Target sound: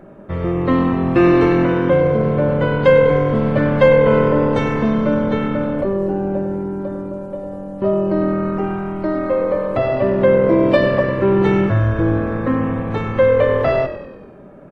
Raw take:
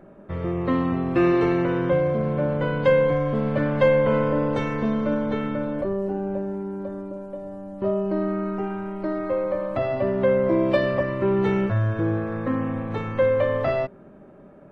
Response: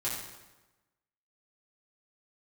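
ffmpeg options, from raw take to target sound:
-filter_complex "[0:a]asplit=7[link_01][link_02][link_03][link_04][link_05][link_06][link_07];[link_02]adelay=98,afreqshift=-42,volume=-12dB[link_08];[link_03]adelay=196,afreqshift=-84,volume=-17.2dB[link_09];[link_04]adelay=294,afreqshift=-126,volume=-22.4dB[link_10];[link_05]adelay=392,afreqshift=-168,volume=-27.6dB[link_11];[link_06]adelay=490,afreqshift=-210,volume=-32.8dB[link_12];[link_07]adelay=588,afreqshift=-252,volume=-38dB[link_13];[link_01][link_08][link_09][link_10][link_11][link_12][link_13]amix=inputs=7:normalize=0,volume=6.5dB"

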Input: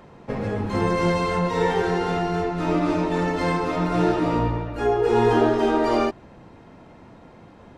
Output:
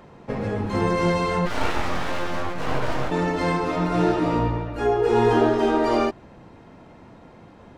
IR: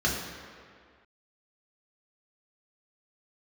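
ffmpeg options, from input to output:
-filter_complex "[0:a]asplit=3[link_01][link_02][link_03];[link_01]afade=type=out:start_time=1.45:duration=0.02[link_04];[link_02]aeval=exprs='abs(val(0))':channel_layout=same,afade=type=in:start_time=1.45:duration=0.02,afade=type=out:start_time=3.1:duration=0.02[link_05];[link_03]afade=type=in:start_time=3.1:duration=0.02[link_06];[link_04][link_05][link_06]amix=inputs=3:normalize=0"

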